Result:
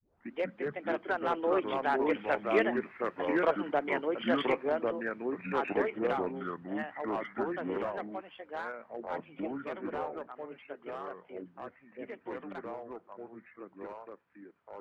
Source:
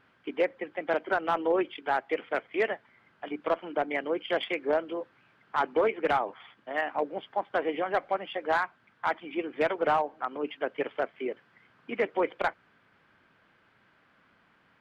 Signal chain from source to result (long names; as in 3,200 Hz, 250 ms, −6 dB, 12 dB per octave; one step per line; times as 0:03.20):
turntable start at the beginning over 0.36 s
source passing by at 0:03.00, 6 m/s, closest 7.7 metres
delay with pitch and tempo change per echo 126 ms, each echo −4 semitones, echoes 2